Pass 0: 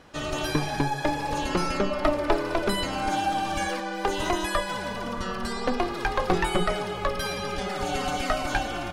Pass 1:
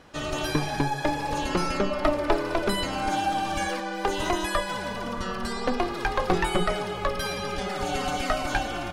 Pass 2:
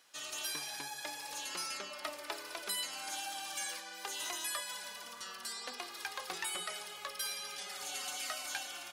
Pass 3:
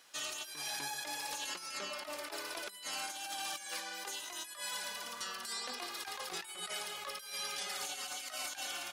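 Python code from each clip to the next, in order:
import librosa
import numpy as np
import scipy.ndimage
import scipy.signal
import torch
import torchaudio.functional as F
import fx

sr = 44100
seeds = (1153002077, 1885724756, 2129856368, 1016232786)

y1 = x
y2 = np.diff(y1, prepend=0.0)
y3 = fx.over_compress(y2, sr, threshold_db=-43.0, ratio=-0.5)
y3 = F.gain(torch.from_numpy(y3), 2.0).numpy()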